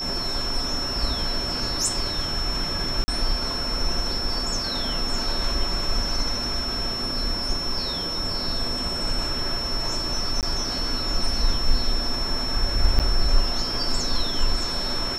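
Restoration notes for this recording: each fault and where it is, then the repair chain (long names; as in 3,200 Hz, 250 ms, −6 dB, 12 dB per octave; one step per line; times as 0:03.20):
whistle 5,400 Hz −27 dBFS
0:03.04–0:03.08: drop-out 40 ms
0:08.40: drop-out 2.4 ms
0:10.41–0:10.43: drop-out 18 ms
0:12.99–0:13.00: drop-out 7.8 ms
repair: notch filter 5,400 Hz, Q 30
repair the gap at 0:03.04, 40 ms
repair the gap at 0:08.40, 2.4 ms
repair the gap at 0:10.41, 18 ms
repair the gap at 0:12.99, 7.8 ms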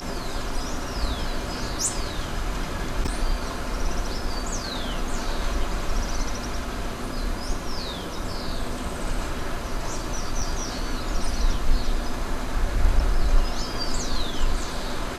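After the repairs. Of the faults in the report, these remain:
none of them is left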